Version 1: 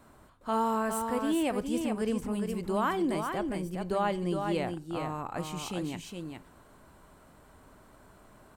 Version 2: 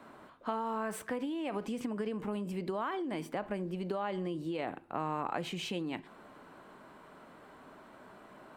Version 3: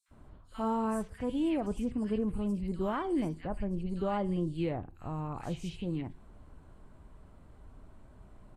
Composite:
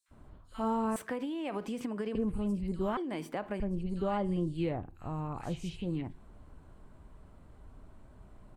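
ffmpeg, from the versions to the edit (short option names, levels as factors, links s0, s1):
-filter_complex "[1:a]asplit=2[s0][s1];[2:a]asplit=3[s2][s3][s4];[s2]atrim=end=0.962[s5];[s0]atrim=start=0.958:end=2.152[s6];[s3]atrim=start=2.148:end=2.972[s7];[s1]atrim=start=2.968:end=3.602[s8];[s4]atrim=start=3.598[s9];[s5][s6]acrossfade=d=0.004:c1=hsin:c2=hsin[s10];[s10][s7]acrossfade=d=0.004:c1=hsin:c2=hsin[s11];[s11][s8]acrossfade=d=0.004:c1=hsin:c2=hsin[s12];[s12][s9]acrossfade=d=0.004:c1=hsin:c2=hsin"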